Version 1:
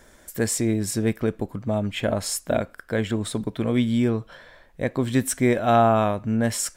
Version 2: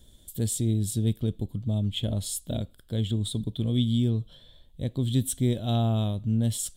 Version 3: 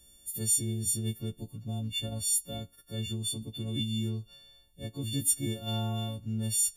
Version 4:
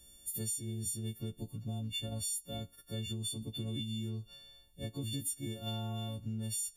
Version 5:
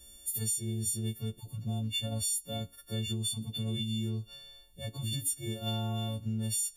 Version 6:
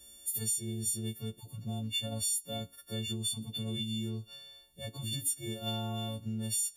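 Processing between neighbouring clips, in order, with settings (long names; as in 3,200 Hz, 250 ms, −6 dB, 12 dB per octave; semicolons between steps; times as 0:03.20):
drawn EQ curve 110 Hz 0 dB, 1,600 Hz −27 dB, 2,400 Hz −21 dB, 3,400 Hz +2 dB, 5,400 Hz −15 dB, 8,600 Hz −6 dB; level +3 dB
every partial snapped to a pitch grid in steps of 4 semitones; level −8 dB
downward compressor 6 to 1, threshold −35 dBFS, peak gain reduction 13 dB
harmonic-percussive split with one part muted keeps harmonic; level +5 dB
high-pass filter 140 Hz 6 dB per octave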